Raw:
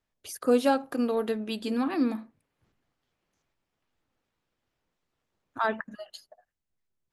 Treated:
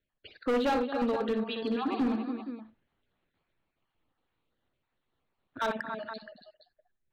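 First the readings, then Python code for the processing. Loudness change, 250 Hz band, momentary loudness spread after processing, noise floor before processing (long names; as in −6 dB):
−3.5 dB, −2.5 dB, 13 LU, −84 dBFS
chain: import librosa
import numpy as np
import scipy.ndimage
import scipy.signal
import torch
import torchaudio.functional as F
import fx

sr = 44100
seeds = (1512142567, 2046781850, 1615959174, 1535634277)

p1 = fx.spec_dropout(x, sr, seeds[0], share_pct=27)
p2 = scipy.signal.sosfilt(scipy.signal.butter(16, 4300.0, 'lowpass', fs=sr, output='sos'), p1)
p3 = p2 + fx.echo_multitap(p2, sr, ms=(60, 223, 281, 471), db=(-9.0, -17.0, -10.0, -13.5), dry=0)
y = np.clip(p3, -10.0 ** (-24.0 / 20.0), 10.0 ** (-24.0 / 20.0))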